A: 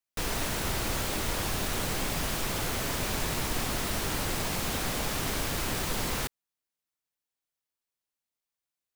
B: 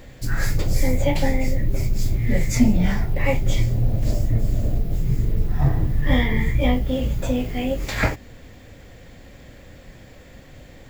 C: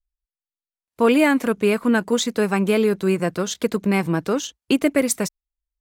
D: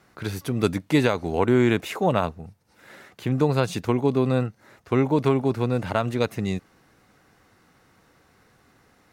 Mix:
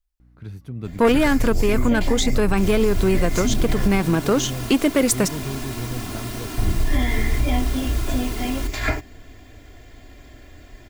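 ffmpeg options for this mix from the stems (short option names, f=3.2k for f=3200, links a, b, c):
-filter_complex "[0:a]equalizer=f=210:t=o:w=0.98:g=11.5,aecho=1:1:2.9:0.89,adelay=2400,volume=-5dB[a];[1:a]aecho=1:1:2.9:0.87,adelay=850,volume=-3dB,asplit=3[b][c][d];[b]atrim=end=4,asetpts=PTS-STARTPTS,afade=t=out:st=3.996:d=0.004:c=hsin[e];[c]atrim=start=4:end=6.58,asetpts=PTS-STARTPTS,volume=0[f];[d]atrim=start=6.58,asetpts=PTS-STARTPTS,afade=t=in:d=0.004:c=hsin[g];[e][f][g]concat=n=3:v=0:a=1[h];[2:a]aeval=exprs='0.447*sin(PI/2*1.41*val(0)/0.447)':c=same,volume=-1.5dB[i];[3:a]bass=f=250:g=14,treble=f=4k:g=-5,aeval=exprs='val(0)+0.0178*(sin(2*PI*60*n/s)+sin(2*PI*2*60*n/s)/2+sin(2*PI*3*60*n/s)/3+sin(2*PI*4*60*n/s)/4+sin(2*PI*5*60*n/s)/5)':c=same,adelay=200,volume=-16.5dB[j];[a][h][i][j]amix=inputs=4:normalize=0,alimiter=limit=-10dB:level=0:latency=1:release=86"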